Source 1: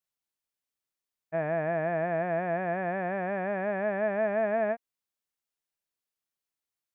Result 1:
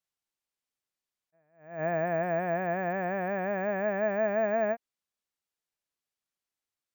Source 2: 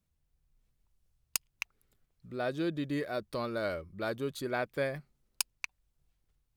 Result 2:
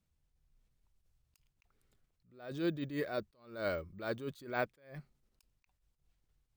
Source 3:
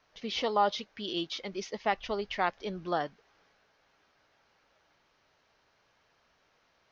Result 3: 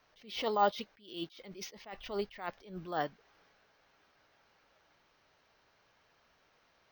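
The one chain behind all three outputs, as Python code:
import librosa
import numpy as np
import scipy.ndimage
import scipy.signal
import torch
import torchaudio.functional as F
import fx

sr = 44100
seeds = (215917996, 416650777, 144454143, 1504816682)

y = np.repeat(scipy.signal.resample_poly(x, 1, 2), 2)[:len(x)]
y = fx.attack_slew(y, sr, db_per_s=120.0)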